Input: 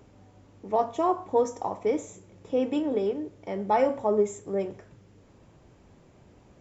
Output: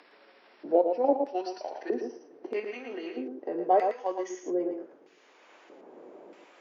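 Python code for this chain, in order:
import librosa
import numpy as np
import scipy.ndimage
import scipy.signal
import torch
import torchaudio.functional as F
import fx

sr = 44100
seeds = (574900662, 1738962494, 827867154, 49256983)

p1 = fx.pitch_glide(x, sr, semitones=-5.5, runs='ending unshifted')
p2 = fx.level_steps(p1, sr, step_db=24)
p3 = p1 + (p2 * 10.0 ** (1.5 / 20.0))
p4 = fx.filter_lfo_bandpass(p3, sr, shape='square', hz=0.79, low_hz=430.0, high_hz=2600.0, q=0.85)
p5 = scipy.signal.sosfilt(scipy.signal.butter(4, 300.0, 'highpass', fs=sr, output='sos'), p4)
p6 = p5 + fx.echo_single(p5, sr, ms=113, db=-6.5, dry=0)
p7 = fx.band_squash(p6, sr, depth_pct=40)
y = p7 * 10.0 ** (1.5 / 20.0)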